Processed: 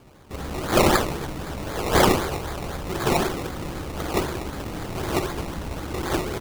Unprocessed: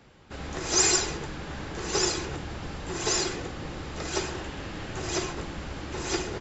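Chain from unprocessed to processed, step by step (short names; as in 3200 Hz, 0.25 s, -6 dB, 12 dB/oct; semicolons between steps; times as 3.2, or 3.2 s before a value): 1.66–2.77 graphic EQ 250/500/4000 Hz -9/+6/+11 dB; decimation with a swept rate 22×, swing 60% 3.9 Hz; gain +5 dB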